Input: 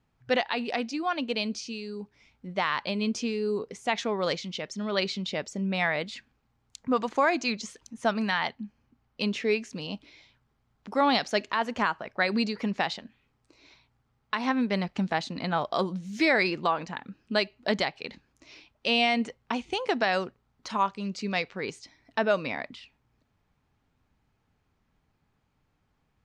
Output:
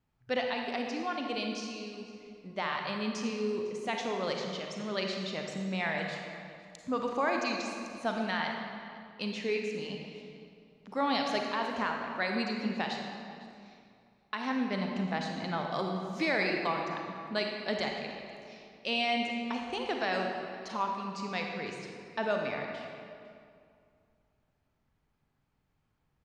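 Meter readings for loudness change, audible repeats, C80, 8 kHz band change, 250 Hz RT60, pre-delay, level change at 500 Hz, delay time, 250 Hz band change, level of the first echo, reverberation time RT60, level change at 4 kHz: -5.0 dB, 1, 3.5 dB, -5.5 dB, 2.5 s, 34 ms, -4.5 dB, 0.504 s, -4.5 dB, -21.0 dB, 2.4 s, -5.0 dB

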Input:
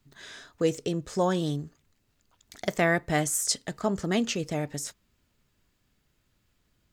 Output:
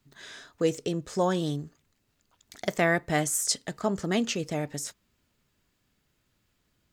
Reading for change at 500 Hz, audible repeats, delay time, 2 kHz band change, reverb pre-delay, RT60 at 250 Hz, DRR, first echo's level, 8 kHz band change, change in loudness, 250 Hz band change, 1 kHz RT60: 0.0 dB, none, none, 0.0 dB, none, none, none, none, 0.0 dB, 0.0 dB, -0.5 dB, none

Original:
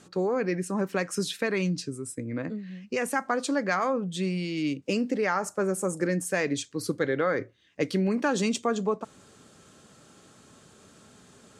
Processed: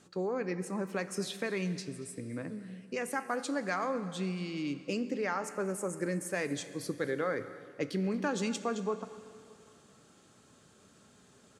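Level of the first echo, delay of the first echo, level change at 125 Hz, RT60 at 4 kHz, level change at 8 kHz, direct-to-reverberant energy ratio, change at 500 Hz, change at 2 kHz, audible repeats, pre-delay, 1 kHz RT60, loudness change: -19.0 dB, 0.236 s, -6.5 dB, 2.5 s, -6.5 dB, 11.0 dB, -6.5 dB, -6.5 dB, 1, 5 ms, 2.7 s, -6.5 dB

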